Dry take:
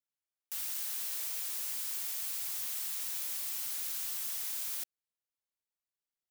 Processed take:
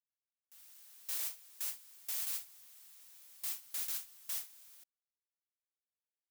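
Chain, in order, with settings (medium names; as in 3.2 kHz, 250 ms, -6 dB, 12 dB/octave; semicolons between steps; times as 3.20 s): gate with hold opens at -25 dBFS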